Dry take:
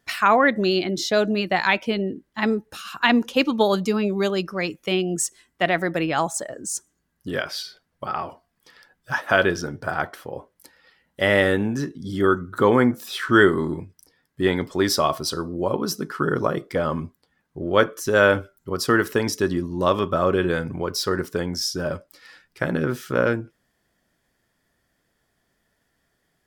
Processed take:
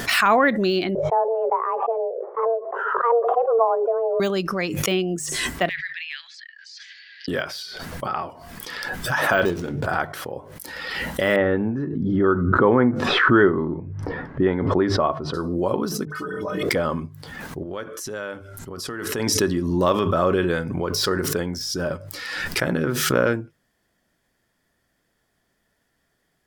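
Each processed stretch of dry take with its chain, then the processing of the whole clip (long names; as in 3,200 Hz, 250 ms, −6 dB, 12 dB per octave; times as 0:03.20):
0:00.95–0:04.20: elliptic band-pass filter 150–880 Hz, stop band 60 dB + frequency shifter +230 Hz
0:05.69–0:07.28: Chebyshev band-pass filter 1,700–4,700 Hz, order 4 + de-essing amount 90%
0:09.45–0:09.86: running median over 25 samples + high-pass filter 53 Hz
0:11.36–0:15.34: low-pass filter 1,500 Hz + one half of a high-frequency compander decoder only
0:16.05–0:16.63: bass and treble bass −1 dB, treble +3 dB + stiff-string resonator 91 Hz, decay 0.23 s, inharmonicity 0.03 + all-pass dispersion highs, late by 56 ms, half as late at 1,900 Hz
0:17.63–0:19.39: Chebyshev low-pass filter 11,000 Hz + downward compressor 2.5 to 1, threshold −35 dBFS
whole clip: de-essing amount 70%; mains-hum notches 50/100/150 Hz; background raised ahead of every attack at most 30 dB per second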